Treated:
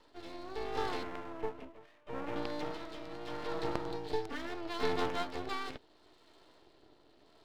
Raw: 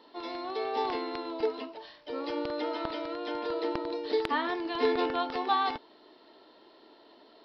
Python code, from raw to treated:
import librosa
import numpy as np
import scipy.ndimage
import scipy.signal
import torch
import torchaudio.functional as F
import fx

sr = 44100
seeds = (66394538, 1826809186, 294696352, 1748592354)

y = fx.ellip_bandpass(x, sr, low_hz=250.0, high_hz=2500.0, order=3, stop_db=40, at=(1.03, 2.36))
y = fx.rotary(y, sr, hz=0.75)
y = np.maximum(y, 0.0)